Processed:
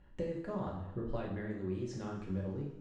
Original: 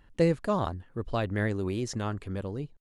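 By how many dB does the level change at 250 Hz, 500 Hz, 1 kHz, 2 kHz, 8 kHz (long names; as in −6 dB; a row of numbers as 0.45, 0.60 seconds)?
−7.5, −9.5, −12.0, −13.5, −15.0 decibels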